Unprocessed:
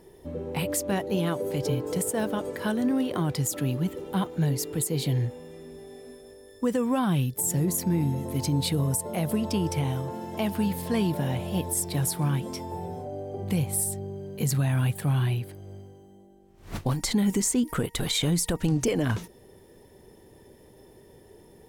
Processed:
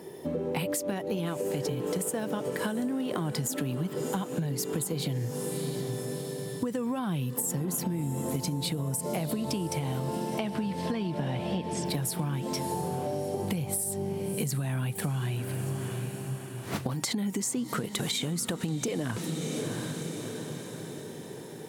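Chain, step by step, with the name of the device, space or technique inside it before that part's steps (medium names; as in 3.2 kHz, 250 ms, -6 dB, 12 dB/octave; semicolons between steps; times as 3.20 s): 10.38–11.86 s: low-pass 5.5 kHz 24 dB/octave; high-pass 120 Hz 24 dB/octave; echo that smears into a reverb 680 ms, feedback 51%, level -14.5 dB; serial compression, leveller first (compression, threshold -27 dBFS, peak gain reduction 7 dB; compression 5:1, threshold -37 dBFS, peak gain reduction 10.5 dB); trim +8.5 dB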